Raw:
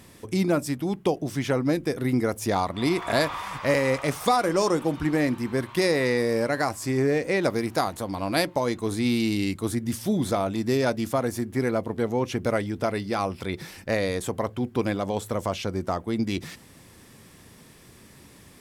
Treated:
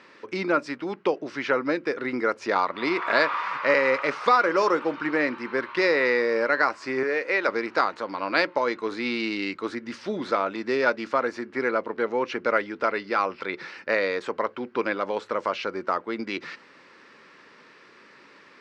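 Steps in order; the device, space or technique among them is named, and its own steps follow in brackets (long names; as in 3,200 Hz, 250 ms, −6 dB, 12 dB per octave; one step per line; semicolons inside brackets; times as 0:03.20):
phone earpiece (loudspeaker in its box 490–4,100 Hz, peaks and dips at 720 Hz −10 dB, 1,400 Hz +5 dB, 3,400 Hz −9 dB)
0:07.03–0:07.49: high-pass filter 500 Hz 6 dB per octave
parametric band 110 Hz −4 dB 0.39 octaves
level +5.5 dB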